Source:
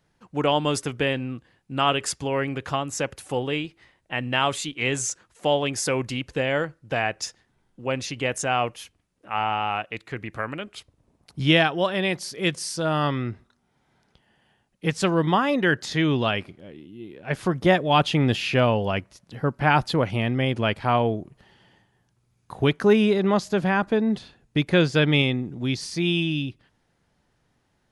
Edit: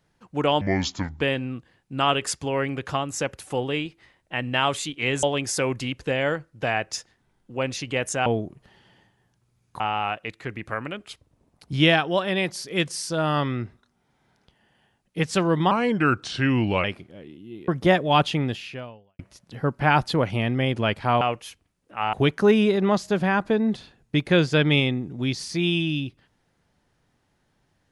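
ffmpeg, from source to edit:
-filter_complex "[0:a]asplit=12[a][b][c][d][e][f][g][h][i][j][k][l];[a]atrim=end=0.614[m];[b]atrim=start=0.61:end=1,asetpts=PTS-STARTPTS,asetrate=28665,aresample=44100[n];[c]atrim=start=0.996:end=5.022[o];[d]atrim=start=5.518:end=8.552[p];[e]atrim=start=21.008:end=22.552[q];[f]atrim=start=9.468:end=15.384[r];[g]atrim=start=15.38:end=16.33,asetpts=PTS-STARTPTS,asetrate=37044,aresample=44100[s];[h]atrim=start=16.326:end=17.172[t];[i]atrim=start=17.478:end=18.99,asetpts=PTS-STARTPTS,afade=t=out:st=0.532:d=0.98:c=qua[u];[j]atrim=start=18.99:end=21.012,asetpts=PTS-STARTPTS,afade=t=in:d=0.004:c=hsin[v];[k]atrim=start=8.548:end=9.472[w];[l]atrim=start=22.548[x];[m][n]acrossfade=d=0.004:c1=hsin:c2=hsin[y];[y][o]acrossfade=d=0.004:c1=hsin:c2=hsin[z];[z][p]acrossfade=d=0.004:c1=hsin:c2=hsin[aa];[aa][q]acrossfade=d=0.004:c1=hsin:c2=hsin[ab];[ab][r]acrossfade=d=0.004:c1=hsin:c2=hsin[ac];[ac][s]acrossfade=d=0.004:c1=hsin:c2=hsin[ad];[ad][t]acrossfade=d=0.004:c1=hsin:c2=hsin[ae];[u][v]concat=n=2:v=0:a=1[af];[ae][af]acrossfade=d=0.004:c1=hsin:c2=hsin[ag];[ag][w]acrossfade=d=0.004:c1=hsin:c2=hsin[ah];[ah][x]acrossfade=d=0.004:c1=hsin:c2=hsin"

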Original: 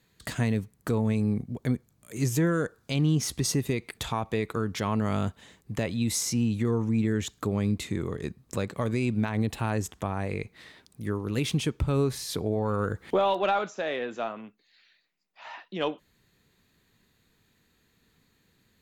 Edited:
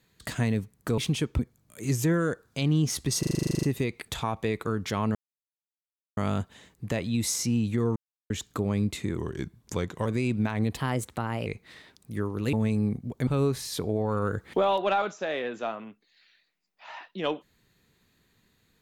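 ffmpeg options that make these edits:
-filter_complex "[0:a]asplit=23[a][b][c][d][e][f][g][h][i][j][k][l][m][n][o][p][q][r][s][t][u][v][w];[a]atrim=end=0.982[x];[b]atrim=start=11.428:end=11.842[y];[c]atrim=start=1.718:end=3.562[z];[d]atrim=start=3.518:end=3.562[aa];[e]atrim=start=3.518:end=3.562[ab];[f]atrim=start=3.518:end=3.562[ac];[g]atrim=start=3.518:end=3.562[ad];[h]atrim=start=3.518:end=3.562[ae];[i]atrim=start=3.518:end=3.562[af];[j]atrim=start=3.518:end=3.562[ag];[k]atrim=start=3.518:end=3.562[ah];[l]atrim=start=3.518:end=3.562[ai];[m]atrim=start=3.518:end=3.562[aj];[n]atrim=start=3.518:end=5.04,asetpts=PTS-STARTPTS,afade=t=out:st=1.518:d=0.004:c=hsin,apad=pad_dur=1.02[ak];[o]atrim=start=5.04:end=6.83,asetpts=PTS-STARTPTS,afade=t=in:d=0.004:c=hsin,afade=t=out:st=1.786:d=0.004:c=hsin[al];[p]atrim=start=6.83:end=7.17,asetpts=PTS-STARTPTS,volume=0[am];[q]atrim=start=7.17:end=8.044,asetpts=PTS-STARTPTS,afade=t=in:d=0.004:c=hsin[an];[r]atrim=start=8.04:end=8.84,asetpts=PTS-STARTPTS,asetrate=39690,aresample=44100[ao];[s]atrim=start=8.836:end=9.554[ap];[t]atrim=start=9.55:end=10.36,asetpts=PTS-STARTPTS,asetrate=51597,aresample=44100[aq];[u]atrim=start=10.356:end=11.432[ar];[v]atrim=start=0.978:end=1.722[as];[w]atrim=start=11.838[at];[x][y]acrossfade=d=0.004:c1=hsin:c2=hsin[au];[au][z]acrossfade=d=0.004:c1=hsin:c2=hsin[av];[av][aa]acrossfade=d=0.004:c1=hsin:c2=hsin[aw];[aw][ab]acrossfade=d=0.004:c1=hsin:c2=hsin[ax];[ax][ac]acrossfade=d=0.004:c1=hsin:c2=hsin[ay];[ay][ad]acrossfade=d=0.004:c1=hsin:c2=hsin[az];[az][ae]acrossfade=d=0.004:c1=hsin:c2=hsin[ba];[ba][af]acrossfade=d=0.004:c1=hsin:c2=hsin[bb];[bb][ag]acrossfade=d=0.004:c1=hsin:c2=hsin[bc];[bc][ah]acrossfade=d=0.004:c1=hsin:c2=hsin[bd];[bd][ai]acrossfade=d=0.004:c1=hsin:c2=hsin[be];[be][aj]acrossfade=d=0.004:c1=hsin:c2=hsin[bf];[ak][al][am][an]concat=n=4:v=0:a=1[bg];[bf][bg]acrossfade=d=0.004:c1=hsin:c2=hsin[bh];[bh][ao]acrossfade=d=0.004:c1=hsin:c2=hsin[bi];[bi][ap]acrossfade=d=0.004:c1=hsin:c2=hsin[bj];[bj][aq]acrossfade=d=0.004:c1=hsin:c2=hsin[bk];[bk][ar]acrossfade=d=0.004:c1=hsin:c2=hsin[bl];[bl][as]acrossfade=d=0.004:c1=hsin:c2=hsin[bm];[bm][at]acrossfade=d=0.004:c1=hsin:c2=hsin"

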